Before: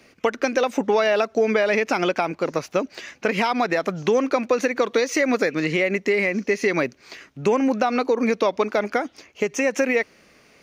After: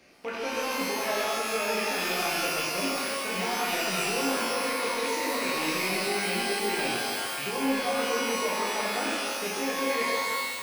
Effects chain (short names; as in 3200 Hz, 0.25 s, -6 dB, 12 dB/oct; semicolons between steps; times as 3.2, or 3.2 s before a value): rattling part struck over -37 dBFS, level -12 dBFS; reverse; compressor 6:1, threshold -33 dBFS, peak gain reduction 17.5 dB; reverse; shimmer reverb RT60 1.7 s, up +12 st, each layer -2 dB, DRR -6 dB; gain -3 dB